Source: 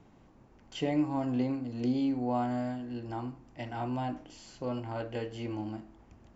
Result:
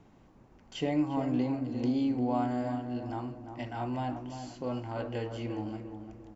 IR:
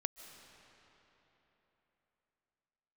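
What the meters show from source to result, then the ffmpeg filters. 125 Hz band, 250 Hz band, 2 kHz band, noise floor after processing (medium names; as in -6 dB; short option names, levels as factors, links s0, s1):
+1.0 dB, +1.0 dB, +0.5 dB, -59 dBFS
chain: -filter_complex "[0:a]asplit=2[s0][s1];[s1]adelay=348,lowpass=f=1400:p=1,volume=0.422,asplit=2[s2][s3];[s3]adelay=348,lowpass=f=1400:p=1,volume=0.4,asplit=2[s4][s5];[s5]adelay=348,lowpass=f=1400:p=1,volume=0.4,asplit=2[s6][s7];[s7]adelay=348,lowpass=f=1400:p=1,volume=0.4,asplit=2[s8][s9];[s9]adelay=348,lowpass=f=1400:p=1,volume=0.4[s10];[s0][s2][s4][s6][s8][s10]amix=inputs=6:normalize=0"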